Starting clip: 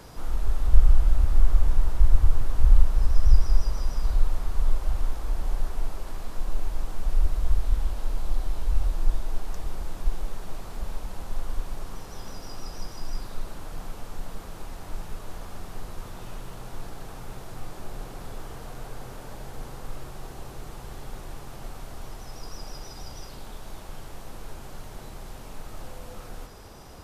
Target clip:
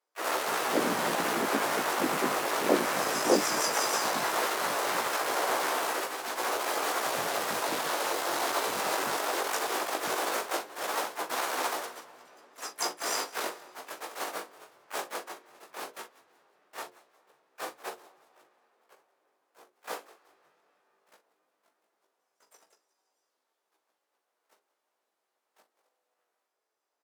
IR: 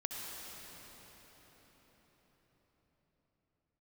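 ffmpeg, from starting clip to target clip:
-filter_complex "[0:a]asplit=2[link_01][link_02];[link_02]asoftclip=type=tanh:threshold=-18.5dB,volume=-11dB[link_03];[link_01][link_03]amix=inputs=2:normalize=0,agate=range=-54dB:threshold=-25dB:ratio=16:detection=peak,bandreject=frequency=60:width_type=h:width=6,bandreject=frequency=120:width_type=h:width=6,bandreject=frequency=180:width_type=h:width=6,bandreject=frequency=240:width_type=h:width=6,bandreject=frequency=300:width_type=h:width=6,bandreject=frequency=360:width_type=h:width=6,bandreject=frequency=420:width_type=h:width=6,bandreject=frequency=480:width_type=h:width=6,bandreject=frequency=540:width_type=h:width=6,asplit=2[link_04][link_05];[link_05]adelay=41,volume=-10.5dB[link_06];[link_04][link_06]amix=inputs=2:normalize=0,asplit=2[link_07][link_08];[1:a]atrim=start_sample=2205,lowpass=4100,adelay=63[link_09];[link_08][link_09]afir=irnorm=-1:irlink=0,volume=-22dB[link_10];[link_07][link_10]amix=inputs=2:normalize=0,aeval=exprs='0.794*sin(PI/2*8.91*val(0)/0.794)':channel_layout=same,asplit=4[link_11][link_12][link_13][link_14];[link_12]adelay=180,afreqshift=-52,volume=-20dB[link_15];[link_13]adelay=360,afreqshift=-104,volume=-28.4dB[link_16];[link_14]adelay=540,afreqshift=-156,volume=-36.8dB[link_17];[link_11][link_15][link_16][link_17]amix=inputs=4:normalize=0,flanger=delay=15.5:depth=5.1:speed=0.17,highpass=frequency=350:width=0.5412,highpass=frequency=350:width=1.3066,asplit=4[link_18][link_19][link_20][link_21];[link_19]asetrate=55563,aresample=44100,atempo=0.793701,volume=-4dB[link_22];[link_20]asetrate=66075,aresample=44100,atempo=0.66742,volume=-5dB[link_23];[link_21]asetrate=88200,aresample=44100,atempo=0.5,volume=-9dB[link_24];[link_18][link_22][link_23][link_24]amix=inputs=4:normalize=0,volume=-6dB"

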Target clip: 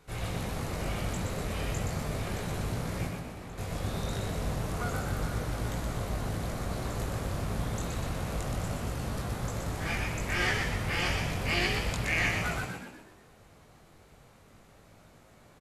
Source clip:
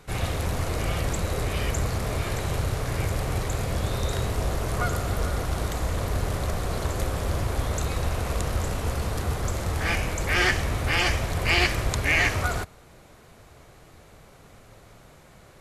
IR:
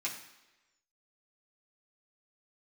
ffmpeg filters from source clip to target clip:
-filter_complex "[0:a]asettb=1/sr,asplit=3[link_01][link_02][link_03];[link_01]atrim=end=3.074[link_04];[link_02]atrim=start=3.07:end=3.58,asetpts=PTS-STARTPTS,afade=type=in:duration=0.004:curve=qsin,afade=type=out:start_time=0.506:duration=0.004:curve=qsin,acrossover=split=590|3600[link_05][link_06][link_07];[link_05]acompressor=threshold=-36dB:ratio=4[link_08];[link_06]acompressor=threshold=-44dB:ratio=4[link_09];[link_07]acompressor=threshold=-55dB:ratio=4[link_10];[link_08][link_09][link_10]amix=inputs=3:normalize=0[link_11];[link_03]atrim=start=3.576[link_12];[link_04][link_11]acrossfade=duration=0.004:curve1=hsin:curve2=qsin[link_13];[link_13][link_12]acrossfade=duration=0.004:curve1=qsin:curve2=hsin,flanger=delay=18.5:depth=2.6:speed=0.32,asplit=2[link_14][link_15];[link_15]asplit=6[link_16][link_17][link_18][link_19][link_20][link_21];[link_16]adelay=122,afreqshift=65,volume=-4.5dB[link_22];[link_17]adelay=244,afreqshift=130,volume=-10.7dB[link_23];[link_18]adelay=366,afreqshift=195,volume=-16.9dB[link_24];[link_19]adelay=488,afreqshift=260,volume=-23.1dB[link_25];[link_20]adelay=610,afreqshift=325,volume=-29.3dB[link_26];[link_21]adelay=732,afreqshift=390,volume=-35.5dB[link_27];[link_22][link_23][link_24][link_25][link_26][link_27]amix=inputs=6:normalize=0[link_28];[link_14][link_28]amix=inputs=2:normalize=0,volume=-5dB"

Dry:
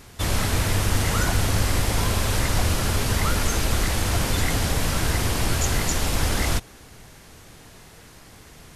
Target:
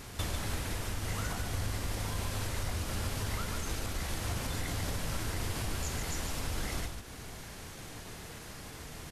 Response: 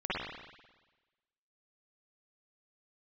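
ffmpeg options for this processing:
-af "acompressor=threshold=-32dB:ratio=16,atempo=0.96,aecho=1:1:37.9|145.8:0.282|0.501"

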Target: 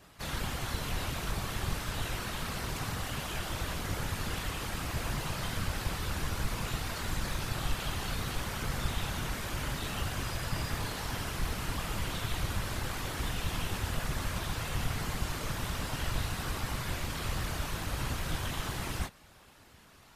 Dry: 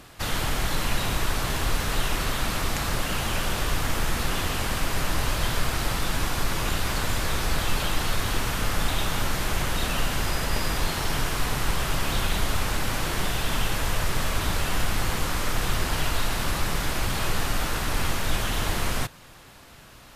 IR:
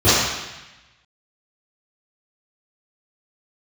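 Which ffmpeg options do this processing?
-af "flanger=delay=18:depth=2.9:speed=0.49,afftfilt=real='hypot(re,im)*cos(2*PI*random(0))':imag='hypot(re,im)*sin(2*PI*random(1))':win_size=512:overlap=0.75"

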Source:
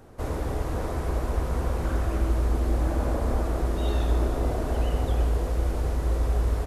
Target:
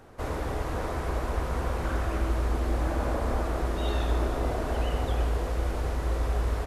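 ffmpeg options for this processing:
ffmpeg -i in.wav -af "equalizer=frequency=1900:width=0.35:gain=6.5,volume=-3.5dB" out.wav

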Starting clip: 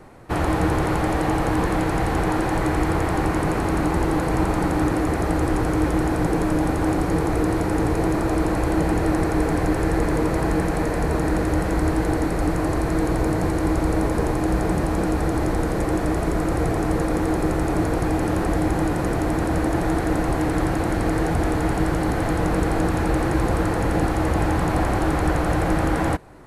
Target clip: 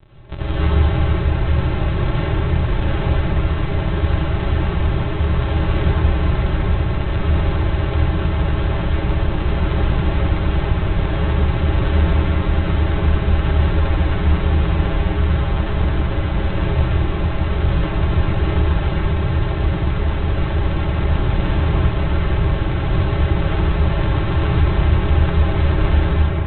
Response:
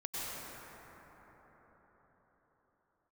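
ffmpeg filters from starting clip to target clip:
-filter_complex "[0:a]acrossover=split=130|3000[link_01][link_02][link_03];[link_02]acompressor=threshold=-32dB:ratio=2[link_04];[link_01][link_04][link_03]amix=inputs=3:normalize=0,aresample=8000,acrusher=samples=33:mix=1:aa=0.000001,aresample=44100[link_05];[1:a]atrim=start_sample=2205,asetrate=66150,aresample=44100[link_06];[link_05][link_06]afir=irnorm=-1:irlink=0,volume=6dB"

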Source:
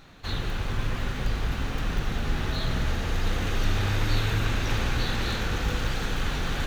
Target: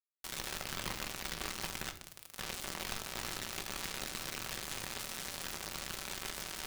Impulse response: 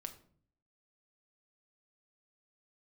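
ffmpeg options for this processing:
-filter_complex "[0:a]asettb=1/sr,asplit=3[link_01][link_02][link_03];[link_01]atrim=end=1.914[link_04];[link_02]atrim=start=1.91:end=2.39,asetpts=PTS-STARTPTS,afade=type=in:duration=0.004:curve=qsin,afade=type=out:start_time=0.476:duration=0.004:curve=qsin,highpass=frequency=1100:width=0.5412,highpass=frequency=1100:width=1.3066[link_05];[link_03]atrim=start=2.386[link_06];[link_04][link_05]acrossfade=duration=0.004:curve1=hsin:curve2=qsin[link_07];[link_07][link_06]acrossfade=duration=0.004:curve1=qsin:curve2=hsin,acompressor=threshold=-27dB:ratio=4,alimiter=level_in=5dB:limit=-24dB:level=0:latency=1:release=16,volume=-5dB,acrusher=bits=4:mix=0:aa=0.000001[link_08];[1:a]atrim=start_sample=2205[link_09];[link_08][link_09]afir=irnorm=-1:irlink=0,volume=3dB"

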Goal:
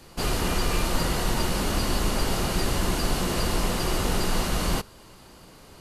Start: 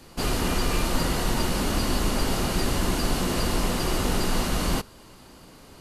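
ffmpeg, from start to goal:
ffmpeg -i in.wav -af "equalizer=frequency=260:width_type=o:width=0.39:gain=-4.5" out.wav

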